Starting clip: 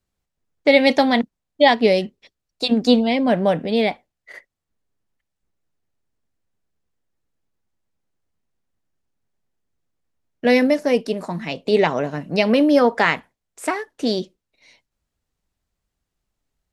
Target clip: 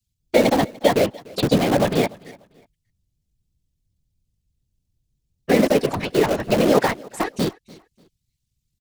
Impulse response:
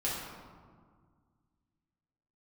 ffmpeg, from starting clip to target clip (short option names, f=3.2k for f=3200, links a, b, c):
-filter_complex "[0:a]acrossover=split=99|420|1100|3400[a][b][c][d][e];[a]acompressor=threshold=-53dB:ratio=4[f];[b]acompressor=threshold=-19dB:ratio=4[g];[c]acompressor=threshold=-17dB:ratio=4[h];[d]acompressor=threshold=-30dB:ratio=4[i];[e]acompressor=threshold=-41dB:ratio=4[j];[f][g][h][i][j]amix=inputs=5:normalize=0,acrossover=split=140|2700[k][l][m];[l]aeval=exprs='sgn(val(0))*max(abs(val(0))-0.0178,0)':c=same[n];[k][n][m]amix=inputs=3:normalize=0,atempo=1.9,afftfilt=real='hypot(re,im)*cos(2*PI*random(0))':imag='hypot(re,im)*sin(2*PI*random(1))':win_size=512:overlap=0.75,asplit=2[o][p];[p]aeval=exprs='(mod(22.4*val(0)+1,2)-1)/22.4':c=same,volume=-8dB[q];[o][q]amix=inputs=2:normalize=0,aecho=1:1:294|588:0.0708|0.0198,volume=8.5dB"